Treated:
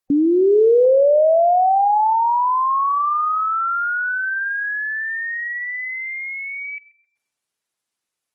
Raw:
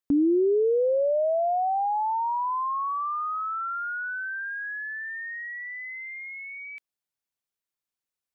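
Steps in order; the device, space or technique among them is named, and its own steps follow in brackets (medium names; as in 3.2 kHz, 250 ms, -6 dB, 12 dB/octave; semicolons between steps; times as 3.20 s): 2.13–2.71 s: distance through air 87 m; tape echo 132 ms, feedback 51%, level -15 dB, low-pass 1.4 kHz; dynamic bell 200 Hz, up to +4 dB, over -50 dBFS, Q 6.7; noise-suppressed video call (high-pass 130 Hz 6 dB/octave; spectral gate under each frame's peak -30 dB strong; level rider gain up to 4.5 dB; trim +5.5 dB; Opus 20 kbps 48 kHz)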